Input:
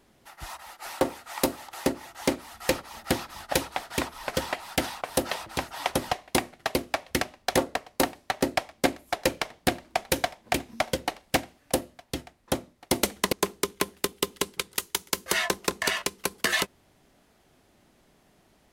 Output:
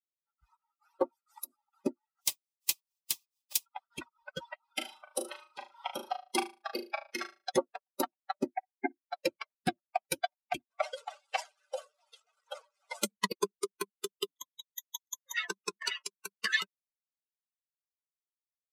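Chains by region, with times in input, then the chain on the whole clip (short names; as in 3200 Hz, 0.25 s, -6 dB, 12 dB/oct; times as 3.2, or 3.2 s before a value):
1.12–1.57 tone controls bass -1 dB, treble +7 dB + compressor 16:1, threshold -24 dBFS
2.2–3.65 spectral contrast lowered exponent 0.26 + bell 1400 Hz -12 dB 0.25 oct
4.7–7.52 HPF 210 Hz + flutter echo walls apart 6.4 m, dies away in 0.79 s
8.51–9.03 LPF 2300 Hz 24 dB/oct + fixed phaser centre 810 Hz, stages 8 + flutter echo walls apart 9.8 m, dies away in 0.22 s
10.7–13.03 delta modulation 64 kbps, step -30.5 dBFS + brick-wall FIR high-pass 420 Hz + sustainer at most 100 dB/s
14.28–15.37 compressor 1.5:1, threshold -43 dBFS + ripple EQ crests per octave 1.1, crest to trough 17 dB
whole clip: per-bin expansion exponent 3; HPF 170 Hz 12 dB/oct; comb 5.2 ms, depth 31%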